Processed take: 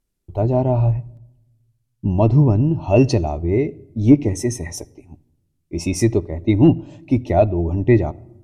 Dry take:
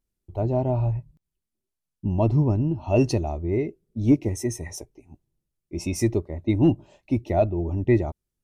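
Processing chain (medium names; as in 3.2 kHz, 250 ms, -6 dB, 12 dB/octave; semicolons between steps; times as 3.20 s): simulated room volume 3100 m³, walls furnished, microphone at 0.34 m; low-pass that closes with the level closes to 980 Hz, closed at -6 dBFS; trim +6 dB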